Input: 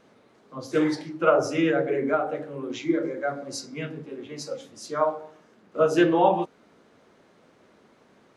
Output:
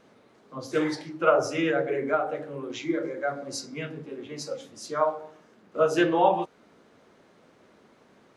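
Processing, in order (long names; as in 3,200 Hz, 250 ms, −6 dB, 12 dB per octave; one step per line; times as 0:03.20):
dynamic equaliser 230 Hz, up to −6 dB, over −37 dBFS, Q 0.96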